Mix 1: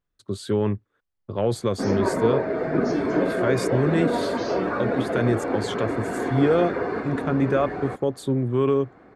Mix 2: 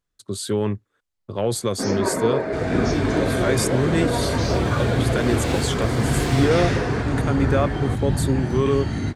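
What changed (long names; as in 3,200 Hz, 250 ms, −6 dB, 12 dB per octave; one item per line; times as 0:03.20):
second sound: unmuted
master: add parametric band 11,000 Hz +13 dB 2.2 octaves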